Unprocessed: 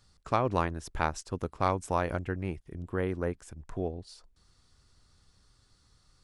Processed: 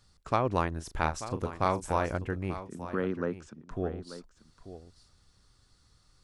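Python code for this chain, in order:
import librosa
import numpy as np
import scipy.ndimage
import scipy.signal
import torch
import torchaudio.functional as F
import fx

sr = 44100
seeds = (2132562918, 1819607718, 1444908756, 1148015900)

y = fx.doubler(x, sr, ms=37.0, db=-10.0, at=(0.72, 2.05), fade=0.02)
y = fx.cabinet(y, sr, low_hz=150.0, low_slope=24, high_hz=6500.0, hz=(220.0, 730.0, 1300.0, 2100.0), db=(8, -6, 6, -6), at=(2.67, 3.71))
y = y + 10.0 ** (-13.0 / 20.0) * np.pad(y, (int(888 * sr / 1000.0), 0))[:len(y)]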